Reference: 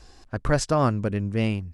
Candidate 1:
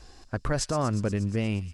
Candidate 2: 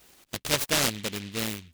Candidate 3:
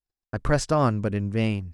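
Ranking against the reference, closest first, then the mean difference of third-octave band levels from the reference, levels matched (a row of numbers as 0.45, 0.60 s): 3, 1, 2; 1.5, 4.0, 12.0 dB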